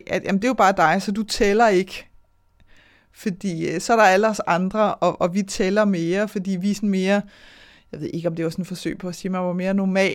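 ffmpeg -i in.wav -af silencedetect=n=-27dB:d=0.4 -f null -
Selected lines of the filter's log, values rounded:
silence_start: 1.99
silence_end: 3.26 | silence_duration: 1.27
silence_start: 7.21
silence_end: 7.93 | silence_duration: 0.73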